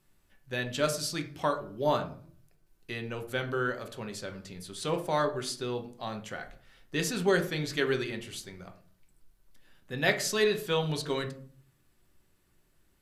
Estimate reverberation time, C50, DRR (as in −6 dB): 0.50 s, 13.0 dB, 4.5 dB